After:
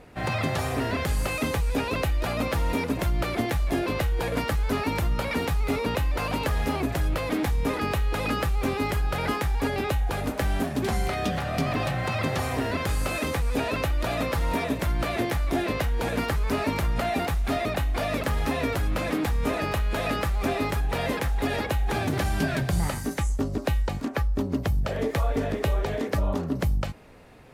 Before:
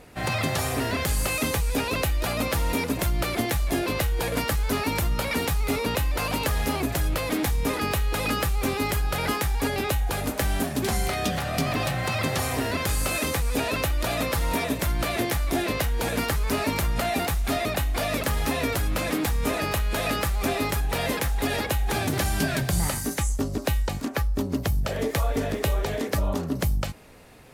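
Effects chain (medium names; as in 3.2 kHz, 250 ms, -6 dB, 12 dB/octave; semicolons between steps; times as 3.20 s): treble shelf 4.3 kHz -10.5 dB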